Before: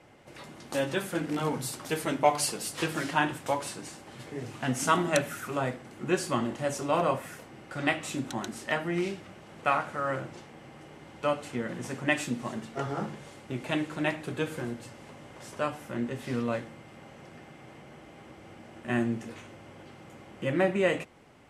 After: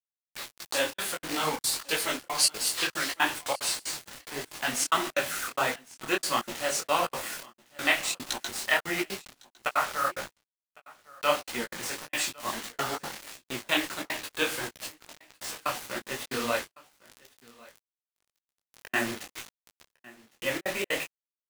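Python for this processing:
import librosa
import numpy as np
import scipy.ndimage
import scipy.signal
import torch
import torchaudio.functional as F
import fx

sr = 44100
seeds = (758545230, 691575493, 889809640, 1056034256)

p1 = fx.highpass(x, sr, hz=1400.0, slope=6)
p2 = fx.peak_eq(p1, sr, hz=4300.0, db=5.5, octaves=0.53)
p3 = fx.rider(p2, sr, range_db=4, speed_s=0.5)
p4 = p2 + F.gain(torch.from_numpy(p3), 1.0).numpy()
p5 = fx.quant_dither(p4, sr, seeds[0], bits=6, dither='none')
p6 = fx.step_gate(p5, sr, bpm=183, pattern='xxx.xx.x', floor_db=-60.0, edge_ms=4.5)
p7 = p6 + fx.echo_single(p6, sr, ms=1106, db=-23.5, dry=0)
p8 = fx.detune_double(p7, sr, cents=54)
y = F.gain(torch.from_numpy(p8), 5.0).numpy()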